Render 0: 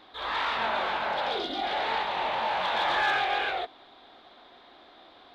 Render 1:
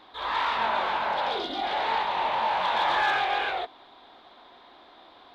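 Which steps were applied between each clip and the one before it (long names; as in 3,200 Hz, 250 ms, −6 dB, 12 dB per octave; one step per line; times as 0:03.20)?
parametric band 970 Hz +6 dB 0.34 octaves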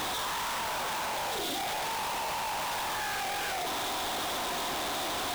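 sign of each sample alone
level −4.5 dB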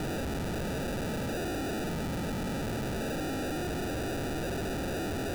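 decimation without filtering 41×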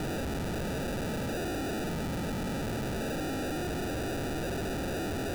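no processing that can be heard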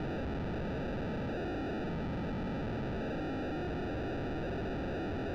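high-frequency loss of the air 270 metres
level −2.5 dB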